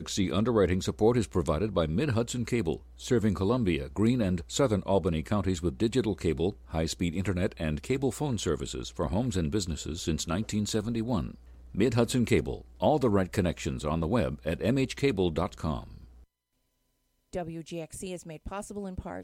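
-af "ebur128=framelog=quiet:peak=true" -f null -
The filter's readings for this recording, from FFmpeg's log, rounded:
Integrated loudness:
  I:         -29.4 LUFS
  Threshold: -39.7 LUFS
Loudness range:
  LRA:         5.0 LU
  Threshold: -49.8 LUFS
  LRA low:   -33.2 LUFS
  LRA high:  -28.2 LUFS
True peak:
  Peak:      -11.6 dBFS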